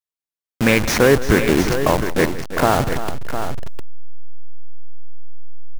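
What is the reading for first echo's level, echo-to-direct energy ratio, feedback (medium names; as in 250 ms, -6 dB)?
-16.5 dB, -7.0 dB, no regular repeats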